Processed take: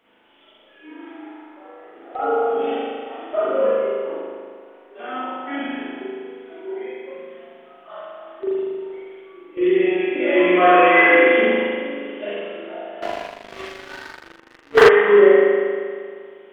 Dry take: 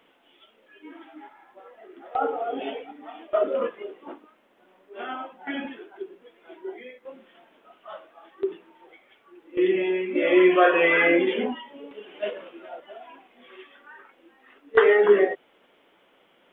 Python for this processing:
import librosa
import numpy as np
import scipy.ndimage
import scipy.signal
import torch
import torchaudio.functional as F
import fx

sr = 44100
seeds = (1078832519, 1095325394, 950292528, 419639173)

y = fx.rev_spring(x, sr, rt60_s=2.0, pass_ms=(39,), chirp_ms=80, drr_db=-9.5)
y = fx.leveller(y, sr, passes=3, at=(13.02, 14.89))
y = y * librosa.db_to_amplitude(-4.0)